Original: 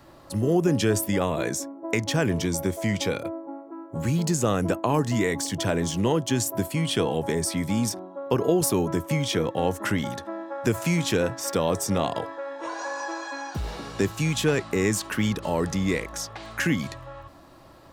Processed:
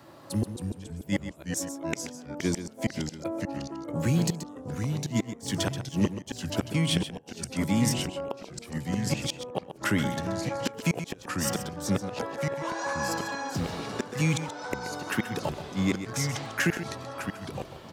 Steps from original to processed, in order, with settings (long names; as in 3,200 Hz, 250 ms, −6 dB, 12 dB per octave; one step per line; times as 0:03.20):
high-pass filter 91 Hz 24 dB per octave
gate with flip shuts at −15 dBFS, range −32 dB
on a send: single-tap delay 130 ms −11 dB
on the sum: delay with pitch and tempo change per echo 233 ms, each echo −2 semitones, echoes 3, each echo −6 dB